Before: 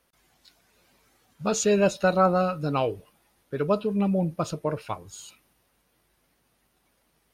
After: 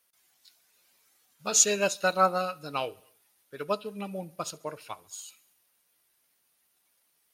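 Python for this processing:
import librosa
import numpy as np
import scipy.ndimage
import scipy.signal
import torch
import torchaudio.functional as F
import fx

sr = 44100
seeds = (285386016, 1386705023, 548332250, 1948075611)

p1 = fx.tilt_eq(x, sr, slope=3.5)
p2 = p1 + fx.echo_feedback(p1, sr, ms=69, feedback_pct=59, wet_db=-22.0, dry=0)
y = fx.upward_expand(p2, sr, threshold_db=-35.0, expansion=1.5)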